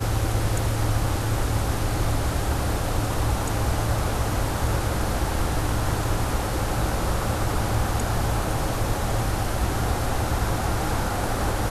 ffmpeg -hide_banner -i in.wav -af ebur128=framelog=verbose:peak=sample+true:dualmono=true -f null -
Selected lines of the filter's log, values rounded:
Integrated loudness:
  I:         -22.4 LUFS
  Threshold: -32.4 LUFS
Loudness range:
  LRA:         0.3 LU
  Threshold: -42.4 LUFS
  LRA low:   -22.6 LUFS
  LRA high:  -22.3 LUFS
Sample peak:
  Peak:      -10.4 dBFS
True peak:
  Peak:      -10.4 dBFS